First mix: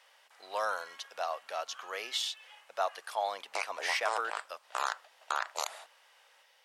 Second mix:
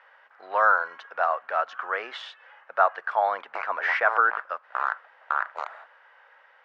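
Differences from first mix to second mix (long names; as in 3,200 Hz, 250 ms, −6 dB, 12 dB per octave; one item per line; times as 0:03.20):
speech +7.0 dB
master: add low-pass with resonance 1,500 Hz, resonance Q 2.9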